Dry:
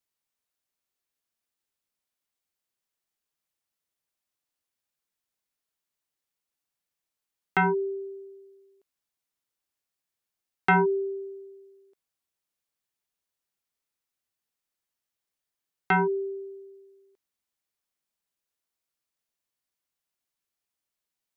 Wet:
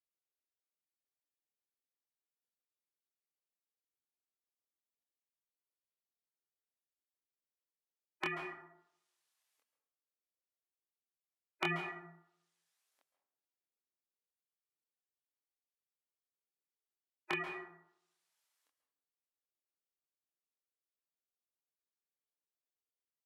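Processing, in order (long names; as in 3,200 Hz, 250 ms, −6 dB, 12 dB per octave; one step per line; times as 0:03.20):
high-pass filter 780 Hz 12 dB per octave
treble cut that deepens with the level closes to 2,300 Hz, closed at −37.5 dBFS
gate on every frequency bin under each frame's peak −15 dB weak
multi-voice chorus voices 4, 0.91 Hz, delay 23 ms, depth 2.1 ms
dense smooth reverb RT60 0.68 s, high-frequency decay 0.5×, pre-delay 115 ms, DRR 7 dB
wrong playback speed 48 kHz file played as 44.1 kHz
level +7.5 dB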